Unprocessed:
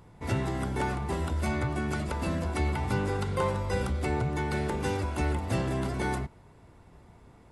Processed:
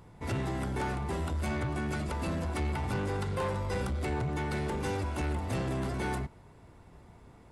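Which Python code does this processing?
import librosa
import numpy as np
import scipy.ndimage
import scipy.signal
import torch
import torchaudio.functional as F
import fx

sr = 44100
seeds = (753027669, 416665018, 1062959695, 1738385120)

y = 10.0 ** (-27.0 / 20.0) * np.tanh(x / 10.0 ** (-27.0 / 20.0))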